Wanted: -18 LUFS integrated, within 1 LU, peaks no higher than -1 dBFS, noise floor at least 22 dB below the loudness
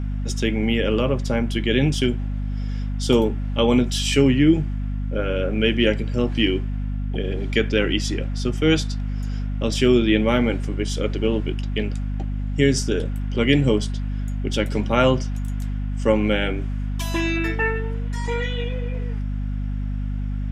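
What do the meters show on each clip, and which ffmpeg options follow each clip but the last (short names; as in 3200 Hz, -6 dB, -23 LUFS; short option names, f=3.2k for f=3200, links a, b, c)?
hum 50 Hz; harmonics up to 250 Hz; hum level -23 dBFS; loudness -22.5 LUFS; peak -2.5 dBFS; loudness target -18.0 LUFS
-> -af "bandreject=f=50:t=h:w=4,bandreject=f=100:t=h:w=4,bandreject=f=150:t=h:w=4,bandreject=f=200:t=h:w=4,bandreject=f=250:t=h:w=4"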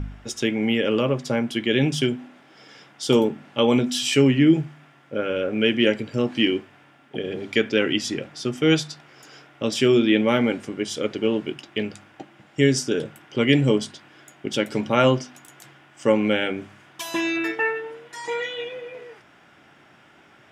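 hum none; loudness -22.5 LUFS; peak -3.0 dBFS; loudness target -18.0 LUFS
-> -af "volume=4.5dB,alimiter=limit=-1dB:level=0:latency=1"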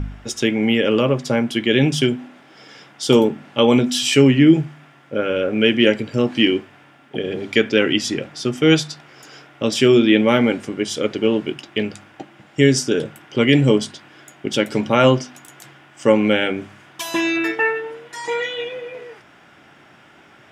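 loudness -18.0 LUFS; peak -1.0 dBFS; noise floor -49 dBFS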